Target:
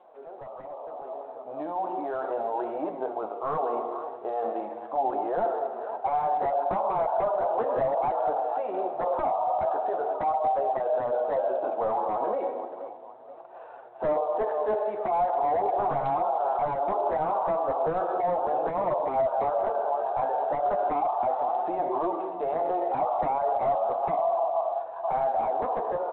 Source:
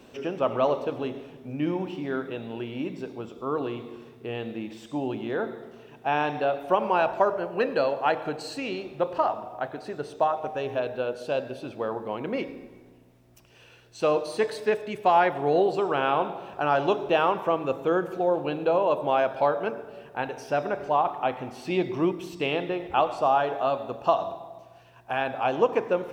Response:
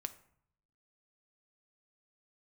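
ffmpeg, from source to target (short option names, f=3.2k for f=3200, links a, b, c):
-filter_complex "[0:a]highpass=f=720:t=q:w=4.2,aecho=1:1:477|954|1431:0.0841|0.0303|0.0109,acompressor=threshold=-19dB:ratio=16,asplit=2[a][b];[1:a]atrim=start_sample=2205,lowpass=3.2k[c];[b][c]afir=irnorm=-1:irlink=0,volume=-11dB[d];[a][d]amix=inputs=2:normalize=0,aeval=exprs='0.106*(abs(mod(val(0)/0.106+3,4)-2)-1)':c=same,alimiter=level_in=5.5dB:limit=-24dB:level=0:latency=1:release=11,volume=-5.5dB,dynaudnorm=f=160:g=21:m=15dB,lowpass=f=1.2k:w=0.5412,lowpass=f=1.2k:w=1.3066,flanger=delay=5.4:depth=9.9:regen=-20:speed=0.37:shape=triangular,volume=-2dB" -ar 8000 -c:a adpcm_g726 -b:a 32k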